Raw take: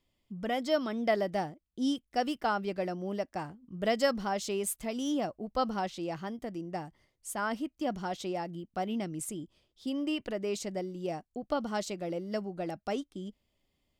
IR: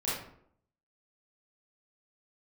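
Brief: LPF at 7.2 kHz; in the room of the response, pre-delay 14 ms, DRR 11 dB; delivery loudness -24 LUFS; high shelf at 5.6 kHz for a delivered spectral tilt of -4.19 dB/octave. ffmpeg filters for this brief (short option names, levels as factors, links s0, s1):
-filter_complex "[0:a]lowpass=7200,highshelf=f=5600:g=8.5,asplit=2[s0][s1];[1:a]atrim=start_sample=2205,adelay=14[s2];[s1][s2]afir=irnorm=-1:irlink=0,volume=0.133[s3];[s0][s3]amix=inputs=2:normalize=0,volume=2.99"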